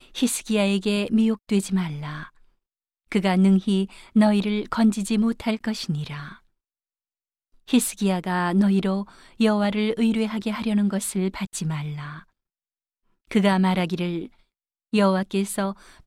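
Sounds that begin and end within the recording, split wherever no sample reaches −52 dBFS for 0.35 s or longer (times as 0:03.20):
0:03.10–0:06.39
0:07.54–0:12.24
0:13.25–0:14.40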